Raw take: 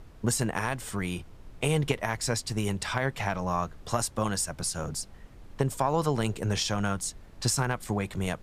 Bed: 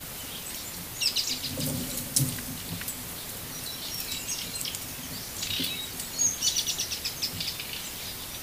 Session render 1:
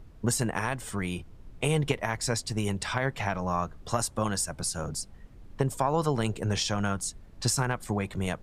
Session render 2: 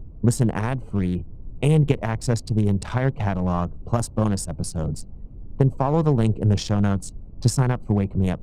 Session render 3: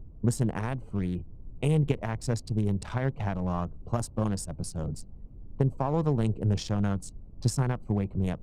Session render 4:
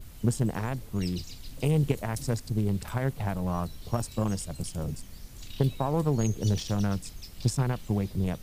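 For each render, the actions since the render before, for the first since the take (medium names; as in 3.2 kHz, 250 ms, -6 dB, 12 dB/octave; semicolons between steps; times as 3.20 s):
noise reduction 6 dB, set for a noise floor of -50 dBFS
local Wiener filter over 25 samples; bass shelf 480 Hz +11.5 dB
trim -7 dB
add bed -16.5 dB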